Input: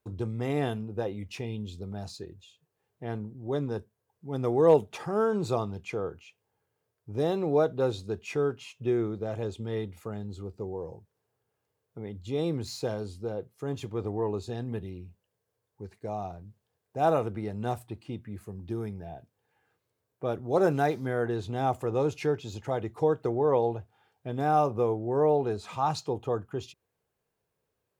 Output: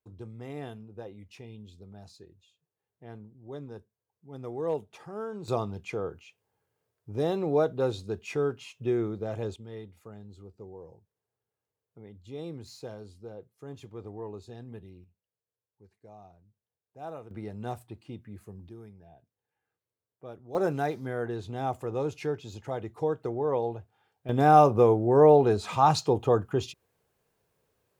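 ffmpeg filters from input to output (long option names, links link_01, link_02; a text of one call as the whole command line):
ffmpeg -i in.wav -af "asetnsamples=nb_out_samples=441:pad=0,asendcmd='5.48 volume volume -0.5dB;9.56 volume volume -9.5dB;15.04 volume volume -16dB;17.31 volume volume -4.5dB;18.69 volume volume -13dB;20.55 volume volume -3.5dB;24.29 volume volume 6.5dB',volume=-10.5dB" out.wav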